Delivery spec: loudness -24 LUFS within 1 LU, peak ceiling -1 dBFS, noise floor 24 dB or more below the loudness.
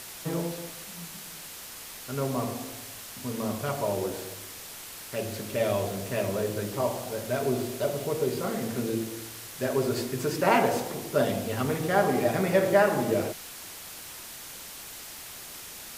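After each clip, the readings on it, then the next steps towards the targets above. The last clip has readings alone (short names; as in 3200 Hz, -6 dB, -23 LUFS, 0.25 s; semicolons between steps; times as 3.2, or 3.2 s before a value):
noise floor -43 dBFS; noise floor target -54 dBFS; loudness -30.0 LUFS; peak -8.5 dBFS; loudness target -24.0 LUFS
-> denoiser 11 dB, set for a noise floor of -43 dBFS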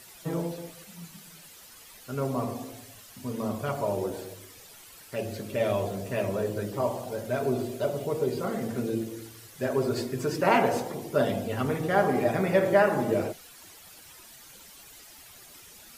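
noise floor -50 dBFS; noise floor target -53 dBFS
-> denoiser 6 dB, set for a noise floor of -50 dBFS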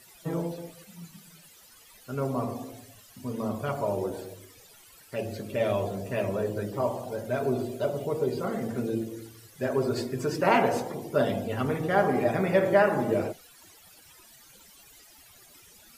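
noise floor -55 dBFS; loudness -28.5 LUFS; peak -8.5 dBFS; loudness target -24.0 LUFS
-> gain +4.5 dB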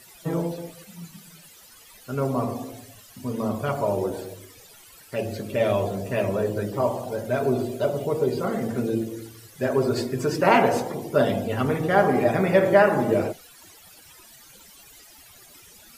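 loudness -24.0 LUFS; peak -4.0 dBFS; noise floor -50 dBFS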